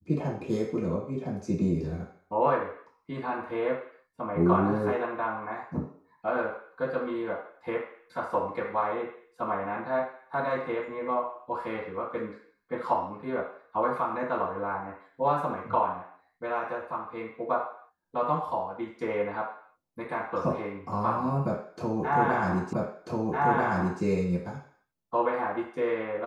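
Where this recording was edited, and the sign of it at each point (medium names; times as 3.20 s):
22.73 s: repeat of the last 1.29 s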